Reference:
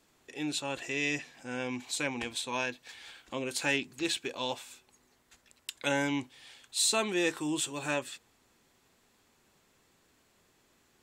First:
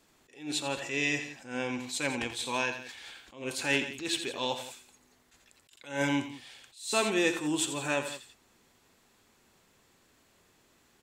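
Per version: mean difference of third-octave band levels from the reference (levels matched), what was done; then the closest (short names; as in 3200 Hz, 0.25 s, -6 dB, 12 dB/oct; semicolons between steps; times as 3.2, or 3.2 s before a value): 4.5 dB: tapped delay 43/84/93/172 ms -19/-11/-18/-15 dB; attack slew limiter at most 140 dB/s; gain +2 dB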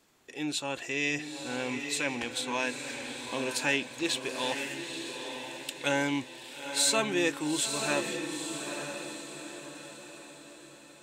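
7.0 dB: low shelf 82 Hz -6.5 dB; diffused feedback echo 0.901 s, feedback 46%, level -6 dB; gain +1.5 dB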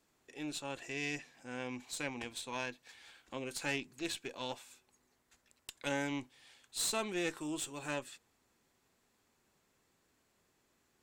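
1.5 dB: bell 3300 Hz -2.5 dB; tube stage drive 21 dB, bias 0.65; gain -3.5 dB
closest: third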